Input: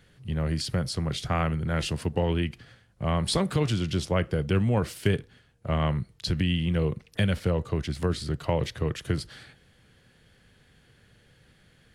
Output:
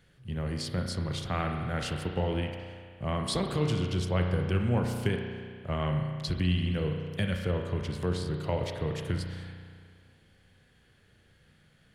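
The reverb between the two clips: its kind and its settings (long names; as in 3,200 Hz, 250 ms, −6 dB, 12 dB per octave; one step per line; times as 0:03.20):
spring reverb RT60 2 s, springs 33 ms, chirp 35 ms, DRR 3 dB
level −5 dB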